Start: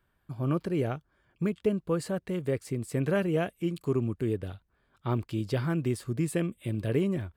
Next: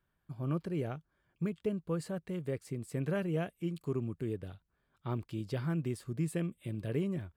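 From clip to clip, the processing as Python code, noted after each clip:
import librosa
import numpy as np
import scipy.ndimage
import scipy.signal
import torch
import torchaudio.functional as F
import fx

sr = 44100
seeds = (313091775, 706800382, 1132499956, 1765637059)

y = fx.peak_eq(x, sr, hz=160.0, db=5.0, octaves=0.36)
y = y * 10.0 ** (-7.5 / 20.0)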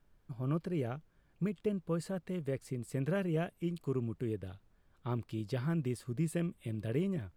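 y = fx.dmg_noise_colour(x, sr, seeds[0], colour='brown', level_db=-67.0)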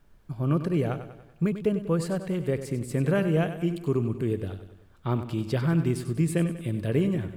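y = fx.echo_feedback(x, sr, ms=96, feedback_pct=51, wet_db=-11)
y = y * 10.0 ** (9.0 / 20.0)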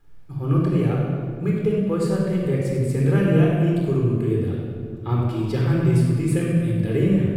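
y = fx.room_shoebox(x, sr, seeds[1], volume_m3=2500.0, walls='mixed', distance_m=4.0)
y = y * 10.0 ** (-2.5 / 20.0)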